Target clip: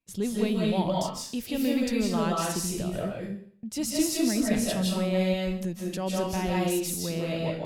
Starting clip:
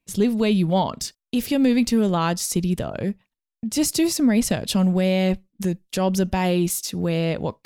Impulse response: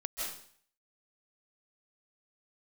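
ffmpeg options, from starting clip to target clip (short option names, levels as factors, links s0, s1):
-filter_complex "[1:a]atrim=start_sample=2205[s0];[0:a][s0]afir=irnorm=-1:irlink=0,volume=0.422"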